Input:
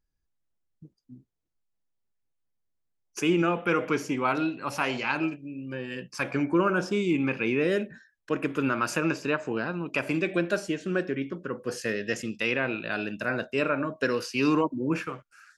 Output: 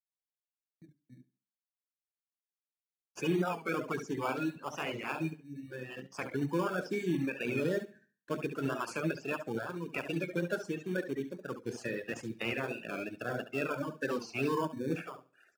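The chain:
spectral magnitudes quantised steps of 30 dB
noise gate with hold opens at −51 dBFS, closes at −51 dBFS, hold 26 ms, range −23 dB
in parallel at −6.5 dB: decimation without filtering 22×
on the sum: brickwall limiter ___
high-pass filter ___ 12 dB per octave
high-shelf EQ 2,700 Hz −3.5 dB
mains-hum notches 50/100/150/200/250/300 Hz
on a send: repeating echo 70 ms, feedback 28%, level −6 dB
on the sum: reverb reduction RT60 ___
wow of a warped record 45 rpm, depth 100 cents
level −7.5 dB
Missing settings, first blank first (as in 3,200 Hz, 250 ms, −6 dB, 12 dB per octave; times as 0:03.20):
−13.5 dBFS, 120 Hz, 0.76 s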